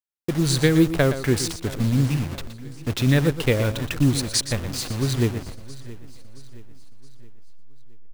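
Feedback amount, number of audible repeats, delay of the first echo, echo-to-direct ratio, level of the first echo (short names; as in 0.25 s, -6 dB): no steady repeat, 5, 0.119 s, -10.5 dB, -11.5 dB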